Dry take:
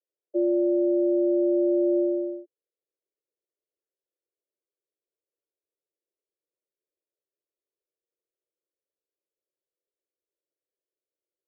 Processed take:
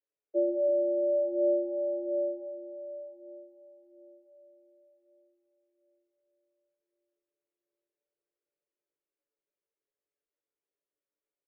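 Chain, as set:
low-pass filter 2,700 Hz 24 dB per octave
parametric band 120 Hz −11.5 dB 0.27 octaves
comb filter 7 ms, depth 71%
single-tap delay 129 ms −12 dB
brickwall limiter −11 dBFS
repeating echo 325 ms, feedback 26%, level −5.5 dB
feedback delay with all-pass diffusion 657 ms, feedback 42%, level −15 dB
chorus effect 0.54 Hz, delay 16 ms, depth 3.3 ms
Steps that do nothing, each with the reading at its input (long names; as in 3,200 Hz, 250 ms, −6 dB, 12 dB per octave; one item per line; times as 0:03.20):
low-pass filter 2,700 Hz: nothing at its input above 600 Hz
parametric band 120 Hz: nothing at its input below 340 Hz
brickwall limiter −11 dBFS: peak of its input −16.5 dBFS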